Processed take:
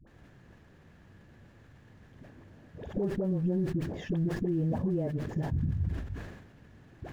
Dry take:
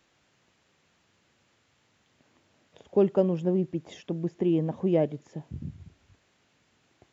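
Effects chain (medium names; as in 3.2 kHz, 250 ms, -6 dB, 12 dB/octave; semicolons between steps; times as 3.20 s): compression 5:1, threshold -39 dBFS, peak gain reduction 19.5 dB; companded quantiser 6-bit; tilt EQ -4.5 dB/octave; phase dispersion highs, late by 72 ms, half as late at 540 Hz; peak limiter -27 dBFS, peak gain reduction 8.5 dB; peaking EQ 1.7 kHz +10.5 dB 0.22 oct; decay stretcher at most 54 dB/s; trim +4 dB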